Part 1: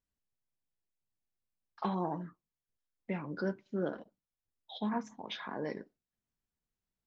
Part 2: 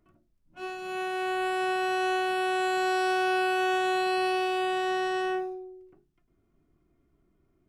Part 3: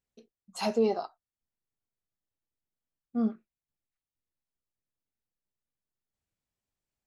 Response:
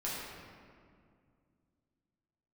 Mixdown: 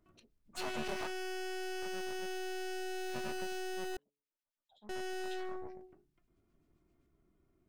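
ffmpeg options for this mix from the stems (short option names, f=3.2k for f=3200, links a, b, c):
-filter_complex "[0:a]acompressor=threshold=-36dB:ratio=6,volume=-13dB,asplit=2[a][b];[1:a]acompressor=threshold=-34dB:ratio=3,asoftclip=type=hard:threshold=-37.5dB,volume=0dB,asplit=3[c][d][e];[c]atrim=end=3.97,asetpts=PTS-STARTPTS,afade=t=out:st=3.966:d=0.004:c=hsin[f];[d]atrim=start=3.97:end=4.89,asetpts=PTS-STARTPTS,volume=0[g];[e]atrim=start=4.89,asetpts=PTS-STARTPTS,afade=t=in:d=0.004:c=hsin[h];[f][g][h]concat=n=3:v=0:a=1[i];[2:a]aecho=1:1:3.3:0.94,asplit=2[j][k];[k]highpass=f=720:p=1,volume=30dB,asoftclip=type=tanh:threshold=-14dB[l];[j][l]amix=inputs=2:normalize=0,lowpass=f=2.2k:p=1,volume=-6dB,volume=-12dB[m];[b]apad=whole_len=311718[n];[m][n]sidechaincompress=threshold=-58dB:ratio=8:attack=16:release=1220[o];[a][o]amix=inputs=2:normalize=0,acrossover=split=1600[p][q];[p]aeval=exprs='val(0)*(1-1/2+1/2*cos(2*PI*7.6*n/s))':c=same[r];[q]aeval=exprs='val(0)*(1-1/2-1/2*cos(2*PI*7.6*n/s))':c=same[s];[r][s]amix=inputs=2:normalize=0,alimiter=level_in=12.5dB:limit=-24dB:level=0:latency=1:release=149,volume=-12.5dB,volume=0dB[t];[i][t]amix=inputs=2:normalize=0,bandreject=f=143.9:t=h:w=4,bandreject=f=287.8:t=h:w=4,bandreject=f=431.7:t=h:w=4,aeval=exprs='0.0299*(cos(1*acos(clip(val(0)/0.0299,-1,1)))-cos(1*PI/2))+0.00376*(cos(3*acos(clip(val(0)/0.0299,-1,1)))-cos(3*PI/2))+0.00841*(cos(4*acos(clip(val(0)/0.0299,-1,1)))-cos(4*PI/2))':c=same"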